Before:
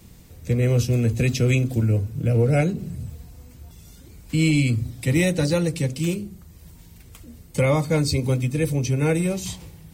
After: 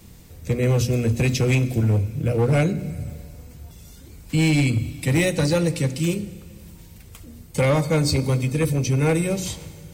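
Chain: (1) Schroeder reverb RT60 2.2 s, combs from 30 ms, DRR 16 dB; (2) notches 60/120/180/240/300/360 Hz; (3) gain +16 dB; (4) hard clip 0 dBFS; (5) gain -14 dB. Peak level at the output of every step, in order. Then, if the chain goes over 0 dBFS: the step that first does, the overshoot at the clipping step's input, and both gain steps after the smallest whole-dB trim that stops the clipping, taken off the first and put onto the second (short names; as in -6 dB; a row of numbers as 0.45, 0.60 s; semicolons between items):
-10.0, -9.5, +6.5, 0.0, -14.0 dBFS; step 3, 6.5 dB; step 3 +9 dB, step 5 -7 dB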